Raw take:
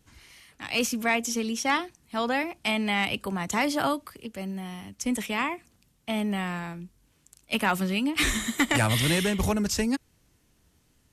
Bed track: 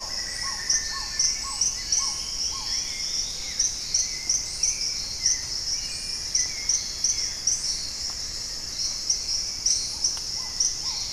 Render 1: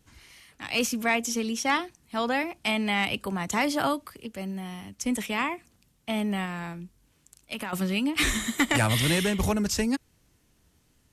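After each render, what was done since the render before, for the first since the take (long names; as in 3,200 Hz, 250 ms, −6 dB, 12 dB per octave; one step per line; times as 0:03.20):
0:06.45–0:07.73: downward compressor, threshold −30 dBFS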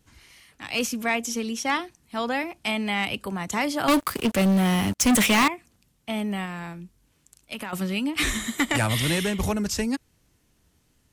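0:03.88–0:05.48: leveller curve on the samples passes 5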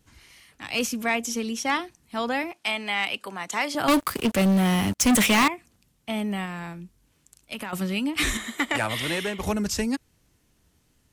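0:02.52–0:03.75: meter weighting curve A
0:08.37–0:09.47: bass and treble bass −11 dB, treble −7 dB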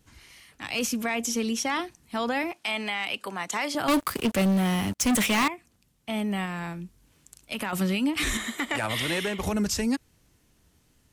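speech leveller within 5 dB 2 s
brickwall limiter −18.5 dBFS, peak gain reduction 7.5 dB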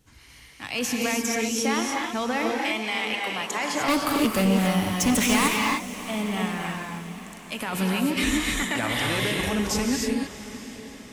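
feedback delay with all-pass diffusion 681 ms, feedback 53%, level −14.5 dB
reverb whose tail is shaped and stops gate 330 ms rising, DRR 0 dB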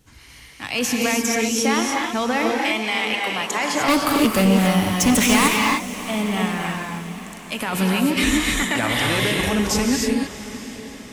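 level +5 dB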